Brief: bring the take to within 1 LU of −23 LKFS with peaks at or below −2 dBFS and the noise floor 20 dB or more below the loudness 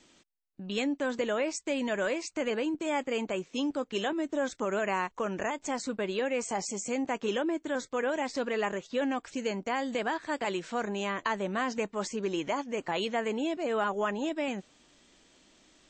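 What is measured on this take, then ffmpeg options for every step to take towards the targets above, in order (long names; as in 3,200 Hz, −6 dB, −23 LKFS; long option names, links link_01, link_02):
integrated loudness −32.0 LKFS; sample peak −16.5 dBFS; target loudness −23.0 LKFS
→ -af "volume=9dB"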